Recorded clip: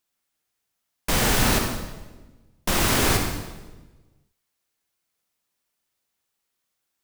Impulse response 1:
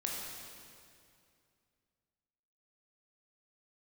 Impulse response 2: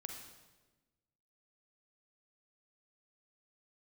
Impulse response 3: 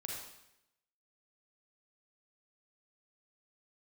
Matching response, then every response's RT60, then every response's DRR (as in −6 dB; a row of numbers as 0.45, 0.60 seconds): 2; 2.4, 1.2, 0.85 seconds; −2.5, 2.5, −2.0 decibels